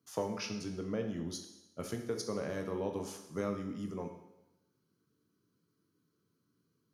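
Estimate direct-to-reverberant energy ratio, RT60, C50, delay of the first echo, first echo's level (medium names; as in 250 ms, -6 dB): 4.0 dB, 0.95 s, 7.5 dB, no echo, no echo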